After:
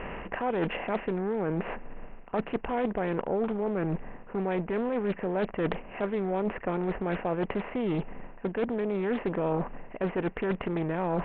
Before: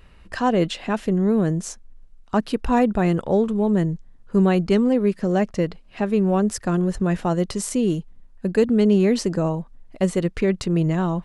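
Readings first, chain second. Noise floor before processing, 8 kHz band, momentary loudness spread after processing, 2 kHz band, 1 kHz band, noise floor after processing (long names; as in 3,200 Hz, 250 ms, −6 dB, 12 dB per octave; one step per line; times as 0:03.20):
−49 dBFS, below −40 dB, 5 LU, −4.0 dB, −6.0 dB, −46 dBFS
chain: compressor on every frequency bin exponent 0.6
low-shelf EQ 400 Hz −5.5 dB
reversed playback
downward compressor 12 to 1, threshold −27 dBFS, peak gain reduction 14 dB
reversed playback
Chebyshev low-pass with heavy ripple 2,800 Hz, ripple 3 dB
highs frequency-modulated by the lows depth 0.49 ms
level +3.5 dB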